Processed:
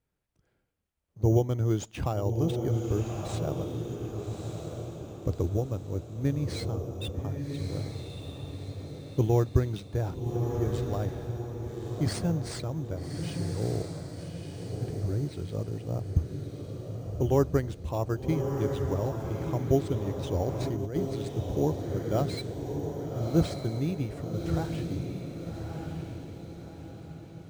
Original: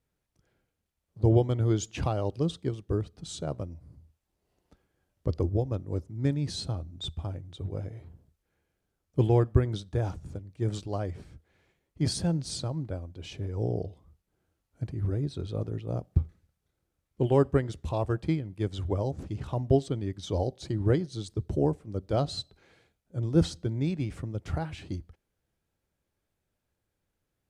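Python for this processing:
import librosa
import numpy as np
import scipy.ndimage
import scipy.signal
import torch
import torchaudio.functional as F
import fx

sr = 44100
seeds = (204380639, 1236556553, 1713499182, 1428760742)

p1 = fx.sample_hold(x, sr, seeds[0], rate_hz=6300.0, jitter_pct=0)
p2 = x + F.gain(torch.from_numpy(p1), -5.0).numpy()
p3 = fx.echo_diffused(p2, sr, ms=1210, feedback_pct=46, wet_db=-4.5)
p4 = fx.over_compress(p3, sr, threshold_db=-26.0, ratio=-1.0, at=(20.46, 20.96))
y = F.gain(torch.from_numpy(p4), -5.0).numpy()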